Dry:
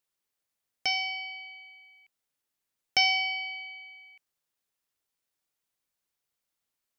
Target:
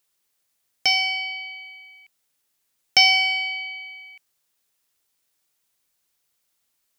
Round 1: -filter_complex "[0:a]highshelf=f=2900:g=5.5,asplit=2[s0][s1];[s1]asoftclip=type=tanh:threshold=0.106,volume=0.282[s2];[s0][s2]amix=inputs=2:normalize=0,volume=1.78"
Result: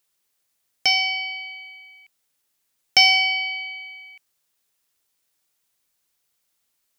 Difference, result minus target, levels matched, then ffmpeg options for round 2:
saturation: distortion -6 dB
-filter_complex "[0:a]highshelf=f=2900:g=5.5,asplit=2[s0][s1];[s1]asoftclip=type=tanh:threshold=0.0376,volume=0.282[s2];[s0][s2]amix=inputs=2:normalize=0,volume=1.78"

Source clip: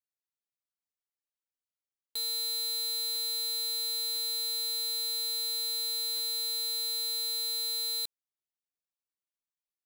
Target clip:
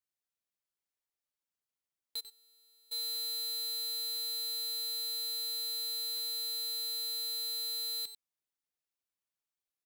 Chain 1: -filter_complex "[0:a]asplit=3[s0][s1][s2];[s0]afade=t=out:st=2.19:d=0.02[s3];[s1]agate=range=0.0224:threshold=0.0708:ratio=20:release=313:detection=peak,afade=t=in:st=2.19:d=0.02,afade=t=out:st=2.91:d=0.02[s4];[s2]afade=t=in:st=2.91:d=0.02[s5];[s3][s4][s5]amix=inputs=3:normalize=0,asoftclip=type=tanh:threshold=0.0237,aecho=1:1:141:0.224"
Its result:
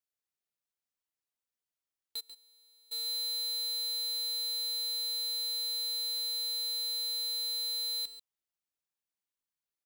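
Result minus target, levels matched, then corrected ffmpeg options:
echo 47 ms late
-filter_complex "[0:a]asplit=3[s0][s1][s2];[s0]afade=t=out:st=2.19:d=0.02[s3];[s1]agate=range=0.0224:threshold=0.0708:ratio=20:release=313:detection=peak,afade=t=in:st=2.19:d=0.02,afade=t=out:st=2.91:d=0.02[s4];[s2]afade=t=in:st=2.91:d=0.02[s5];[s3][s4][s5]amix=inputs=3:normalize=0,asoftclip=type=tanh:threshold=0.0237,aecho=1:1:94:0.224"

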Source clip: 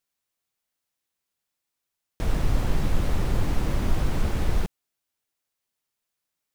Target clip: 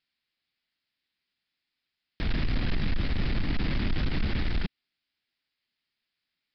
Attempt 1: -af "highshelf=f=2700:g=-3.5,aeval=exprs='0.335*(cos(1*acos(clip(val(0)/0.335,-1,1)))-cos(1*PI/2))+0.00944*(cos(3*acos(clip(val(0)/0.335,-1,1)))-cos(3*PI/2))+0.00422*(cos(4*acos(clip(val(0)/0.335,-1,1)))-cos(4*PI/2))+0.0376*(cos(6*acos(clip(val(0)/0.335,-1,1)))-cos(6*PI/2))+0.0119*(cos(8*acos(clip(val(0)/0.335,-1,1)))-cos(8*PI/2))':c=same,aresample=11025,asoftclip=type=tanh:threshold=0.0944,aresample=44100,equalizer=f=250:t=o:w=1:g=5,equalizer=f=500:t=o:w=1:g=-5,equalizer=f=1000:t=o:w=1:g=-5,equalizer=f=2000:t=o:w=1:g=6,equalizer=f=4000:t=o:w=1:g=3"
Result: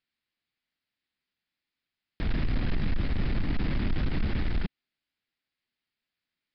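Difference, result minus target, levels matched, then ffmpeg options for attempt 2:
4 kHz band -5.0 dB
-af "highshelf=f=2700:g=5,aeval=exprs='0.335*(cos(1*acos(clip(val(0)/0.335,-1,1)))-cos(1*PI/2))+0.00944*(cos(3*acos(clip(val(0)/0.335,-1,1)))-cos(3*PI/2))+0.00422*(cos(4*acos(clip(val(0)/0.335,-1,1)))-cos(4*PI/2))+0.0376*(cos(6*acos(clip(val(0)/0.335,-1,1)))-cos(6*PI/2))+0.0119*(cos(8*acos(clip(val(0)/0.335,-1,1)))-cos(8*PI/2))':c=same,aresample=11025,asoftclip=type=tanh:threshold=0.0944,aresample=44100,equalizer=f=250:t=o:w=1:g=5,equalizer=f=500:t=o:w=1:g=-5,equalizer=f=1000:t=o:w=1:g=-5,equalizer=f=2000:t=o:w=1:g=6,equalizer=f=4000:t=o:w=1:g=3"

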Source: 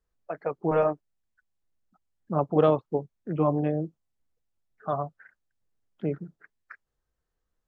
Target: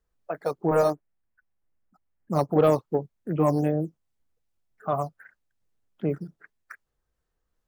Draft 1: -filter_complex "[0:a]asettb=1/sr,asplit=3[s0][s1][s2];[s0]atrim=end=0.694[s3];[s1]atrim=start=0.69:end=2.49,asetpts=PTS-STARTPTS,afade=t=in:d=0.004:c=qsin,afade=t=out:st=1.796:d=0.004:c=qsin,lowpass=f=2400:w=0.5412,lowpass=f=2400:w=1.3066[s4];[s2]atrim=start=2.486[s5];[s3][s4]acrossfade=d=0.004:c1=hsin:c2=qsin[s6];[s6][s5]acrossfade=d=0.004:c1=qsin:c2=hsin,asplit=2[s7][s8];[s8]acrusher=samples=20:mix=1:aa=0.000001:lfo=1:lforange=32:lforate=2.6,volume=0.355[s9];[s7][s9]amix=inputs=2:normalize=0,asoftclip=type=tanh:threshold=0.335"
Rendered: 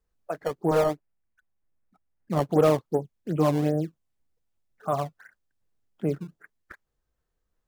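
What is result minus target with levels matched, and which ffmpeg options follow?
decimation with a swept rate: distortion +13 dB
-filter_complex "[0:a]asettb=1/sr,asplit=3[s0][s1][s2];[s0]atrim=end=0.694[s3];[s1]atrim=start=0.69:end=2.49,asetpts=PTS-STARTPTS,afade=t=in:d=0.004:c=qsin,afade=t=out:st=1.796:d=0.004:c=qsin,lowpass=f=2400:w=0.5412,lowpass=f=2400:w=1.3066[s4];[s2]atrim=start=2.486[s5];[s3][s4]acrossfade=d=0.004:c1=hsin:c2=qsin[s6];[s6][s5]acrossfade=d=0.004:c1=qsin:c2=hsin,asplit=2[s7][s8];[s8]acrusher=samples=5:mix=1:aa=0.000001:lfo=1:lforange=8:lforate=2.6,volume=0.355[s9];[s7][s9]amix=inputs=2:normalize=0,asoftclip=type=tanh:threshold=0.335"

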